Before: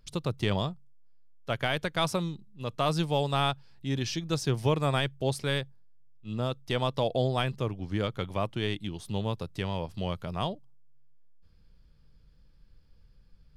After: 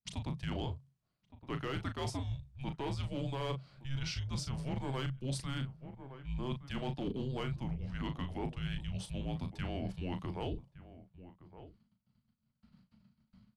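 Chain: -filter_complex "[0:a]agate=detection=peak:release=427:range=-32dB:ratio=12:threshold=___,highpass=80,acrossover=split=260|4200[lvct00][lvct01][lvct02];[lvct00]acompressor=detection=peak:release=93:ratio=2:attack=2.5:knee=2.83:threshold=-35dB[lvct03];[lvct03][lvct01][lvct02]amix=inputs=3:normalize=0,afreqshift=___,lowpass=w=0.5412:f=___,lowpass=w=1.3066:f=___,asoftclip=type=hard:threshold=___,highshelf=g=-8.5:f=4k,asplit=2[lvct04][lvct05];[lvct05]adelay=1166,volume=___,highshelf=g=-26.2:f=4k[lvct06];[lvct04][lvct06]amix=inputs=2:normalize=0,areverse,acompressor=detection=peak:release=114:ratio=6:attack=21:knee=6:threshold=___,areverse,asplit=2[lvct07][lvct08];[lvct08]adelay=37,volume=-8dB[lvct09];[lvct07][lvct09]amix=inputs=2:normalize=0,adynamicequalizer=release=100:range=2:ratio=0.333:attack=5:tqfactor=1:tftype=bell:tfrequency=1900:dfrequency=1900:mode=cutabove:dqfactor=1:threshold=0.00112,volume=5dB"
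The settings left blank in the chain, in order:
-52dB, -270, 11k, 11k, -22dB, -25dB, -43dB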